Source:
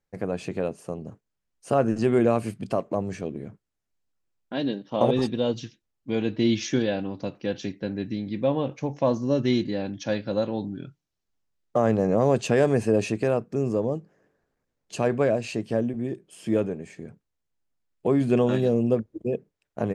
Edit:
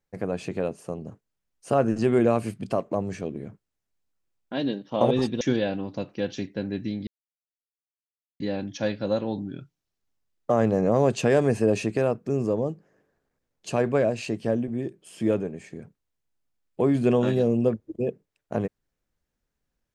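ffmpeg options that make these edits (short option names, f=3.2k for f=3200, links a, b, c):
-filter_complex "[0:a]asplit=4[a][b][c][d];[a]atrim=end=5.412[e];[b]atrim=start=6.668:end=8.33,asetpts=PTS-STARTPTS,afade=t=out:st=1.658:d=0.004:c=hsin[f];[c]atrim=start=8.33:end=9.66,asetpts=PTS-STARTPTS,volume=0[g];[d]atrim=start=9.66,asetpts=PTS-STARTPTS,afade=t=in:d=0.004:c=hsin[h];[f][g][h]concat=n=3:v=0:a=1[i];[e][i]acrossfade=d=0.004:c1=hsin:c2=hsin"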